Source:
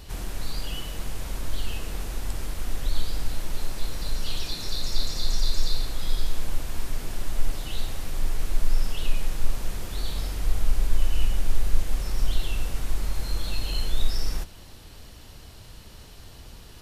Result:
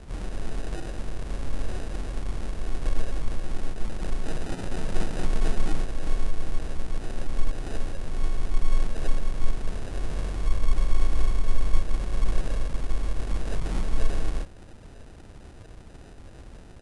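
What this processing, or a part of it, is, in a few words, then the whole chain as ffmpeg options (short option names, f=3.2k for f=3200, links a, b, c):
crushed at another speed: -af "asetrate=88200,aresample=44100,acrusher=samples=20:mix=1:aa=0.000001,asetrate=22050,aresample=44100"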